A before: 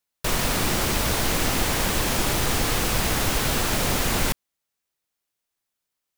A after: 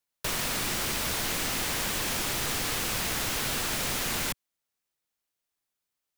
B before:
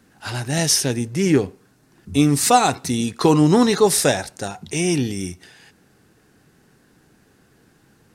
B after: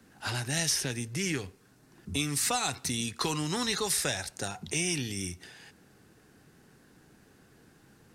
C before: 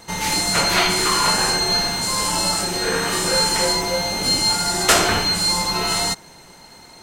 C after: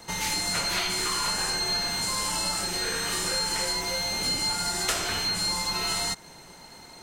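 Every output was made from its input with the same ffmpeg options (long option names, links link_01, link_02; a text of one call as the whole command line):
ffmpeg -i in.wav -filter_complex "[0:a]acrossover=split=99|1300|2600[link_01][link_02][link_03][link_04];[link_01]acompressor=threshold=-39dB:ratio=4[link_05];[link_02]acompressor=threshold=-33dB:ratio=4[link_06];[link_03]acompressor=threshold=-33dB:ratio=4[link_07];[link_04]acompressor=threshold=-25dB:ratio=4[link_08];[link_05][link_06][link_07][link_08]amix=inputs=4:normalize=0,volume=-3dB" out.wav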